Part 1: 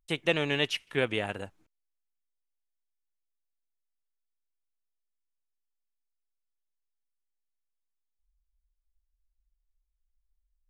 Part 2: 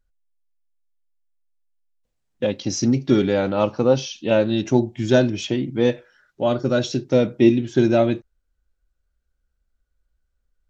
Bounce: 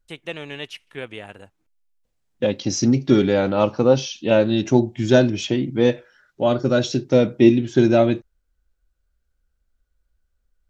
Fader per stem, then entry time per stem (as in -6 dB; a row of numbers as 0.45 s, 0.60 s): -5.0 dB, +1.5 dB; 0.00 s, 0.00 s